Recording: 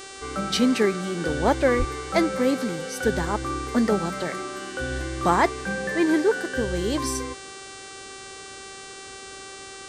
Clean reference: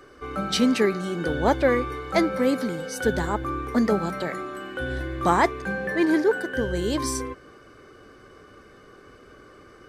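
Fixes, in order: de-hum 388.5 Hz, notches 24; 1.78–1.90 s: high-pass 140 Hz 24 dB/octave

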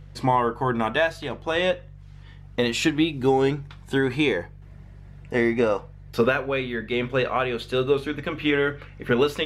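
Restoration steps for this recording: de-hum 48.5 Hz, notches 3

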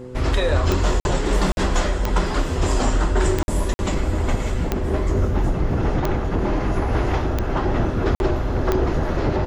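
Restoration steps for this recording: de-click; de-hum 125.8 Hz, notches 4; interpolate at 1.00/1.52/3.43/3.74/8.15 s, 51 ms; inverse comb 108 ms -17 dB

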